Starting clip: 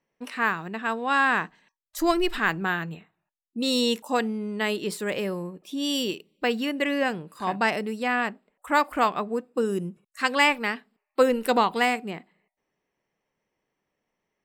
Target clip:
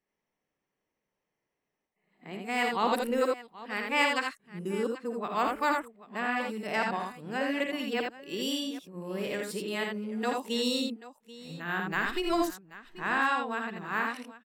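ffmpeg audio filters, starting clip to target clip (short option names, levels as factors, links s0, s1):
-af "areverse,aecho=1:1:56|82|785:0.376|0.631|0.141,volume=0.447"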